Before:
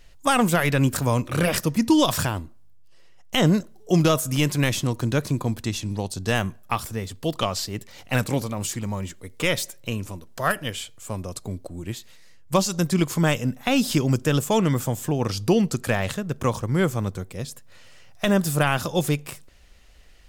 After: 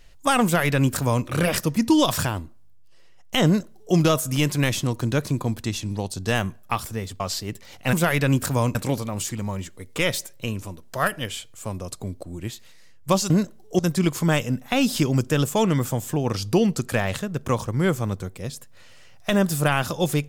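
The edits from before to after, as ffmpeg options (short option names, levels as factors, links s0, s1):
-filter_complex "[0:a]asplit=6[s0][s1][s2][s3][s4][s5];[s0]atrim=end=7.202[s6];[s1]atrim=start=7.458:end=8.192[s7];[s2]atrim=start=0.438:end=1.262[s8];[s3]atrim=start=8.188:end=12.742[s9];[s4]atrim=start=3.458:end=3.952[s10];[s5]atrim=start=12.738[s11];[s6][s7]acrossfade=d=0.004:c1=hsin:c2=hsin[s12];[s12][s8]acrossfade=d=0.004:c1=hsin:c2=hsin[s13];[s13][s9]acrossfade=d=0.004:c1=hsin:c2=hsin[s14];[s14][s10]acrossfade=d=0.004:c1=hsin:c2=hsin[s15];[s15][s11]acrossfade=d=0.004:c1=hsin:c2=hsin"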